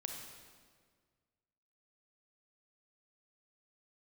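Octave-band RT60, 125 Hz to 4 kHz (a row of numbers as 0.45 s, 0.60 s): 2.1 s, 1.9 s, 1.8 s, 1.6 s, 1.5 s, 1.4 s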